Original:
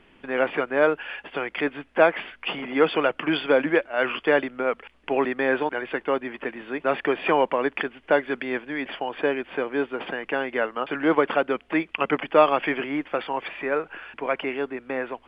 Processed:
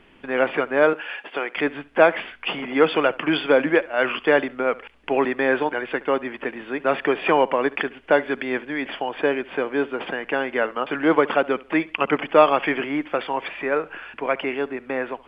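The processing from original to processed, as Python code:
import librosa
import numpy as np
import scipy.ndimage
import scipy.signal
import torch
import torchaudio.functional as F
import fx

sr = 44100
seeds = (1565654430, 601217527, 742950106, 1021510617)

y = fx.highpass(x, sr, hz=290.0, slope=12, at=(0.93, 1.55))
y = fx.echo_feedback(y, sr, ms=70, feedback_pct=31, wet_db=-21.0)
y = y * 10.0 ** (2.5 / 20.0)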